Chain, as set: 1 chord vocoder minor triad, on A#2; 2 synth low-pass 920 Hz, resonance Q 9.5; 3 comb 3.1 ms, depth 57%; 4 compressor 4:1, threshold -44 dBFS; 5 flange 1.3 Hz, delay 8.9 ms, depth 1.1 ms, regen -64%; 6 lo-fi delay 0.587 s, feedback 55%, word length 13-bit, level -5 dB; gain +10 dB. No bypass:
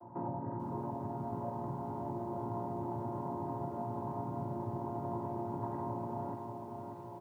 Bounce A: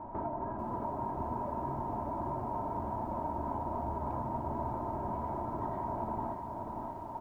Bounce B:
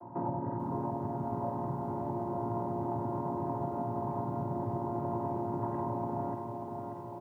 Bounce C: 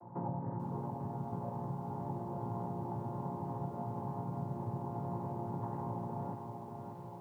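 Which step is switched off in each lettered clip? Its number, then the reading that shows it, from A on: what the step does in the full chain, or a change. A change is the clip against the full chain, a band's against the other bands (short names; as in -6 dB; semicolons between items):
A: 1, 1 kHz band +5.5 dB; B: 5, loudness change +4.0 LU; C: 3, 125 Hz band +4.0 dB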